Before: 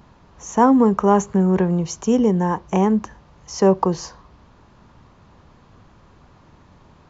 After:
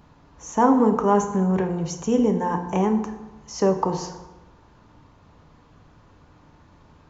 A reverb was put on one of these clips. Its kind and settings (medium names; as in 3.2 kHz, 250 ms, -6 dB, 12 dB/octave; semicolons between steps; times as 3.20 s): FDN reverb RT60 1.1 s, low-frequency decay 1×, high-frequency decay 0.6×, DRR 5 dB; trim -4 dB